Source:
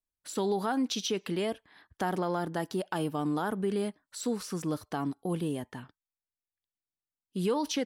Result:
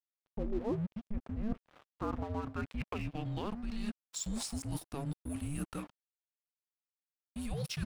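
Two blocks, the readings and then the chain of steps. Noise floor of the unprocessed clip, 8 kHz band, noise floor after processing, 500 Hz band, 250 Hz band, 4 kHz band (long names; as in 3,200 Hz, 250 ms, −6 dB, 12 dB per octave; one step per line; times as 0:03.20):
below −85 dBFS, −4.0 dB, below −85 dBFS, −11.0 dB, −6.5 dB, −9.0 dB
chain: high-pass filter 55 Hz 12 dB per octave
reversed playback
downward compressor 8 to 1, threshold −39 dBFS, peak gain reduction 14.5 dB
reversed playback
low-pass filter sweep 900 Hz → 11,000 Hz, 0:01.31–0:04.73
frequency shifter −430 Hz
dead-zone distortion −55 dBFS
level +5.5 dB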